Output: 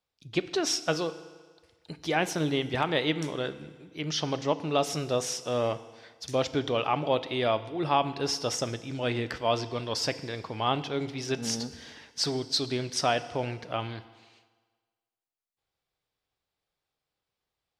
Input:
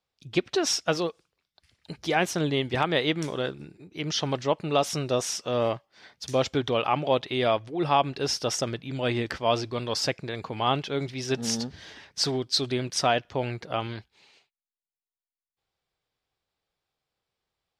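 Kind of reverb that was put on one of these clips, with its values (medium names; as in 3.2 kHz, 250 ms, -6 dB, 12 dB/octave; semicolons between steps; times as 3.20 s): FDN reverb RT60 1.5 s, low-frequency decay 0.85×, high-frequency decay 0.95×, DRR 12.5 dB; trim -2.5 dB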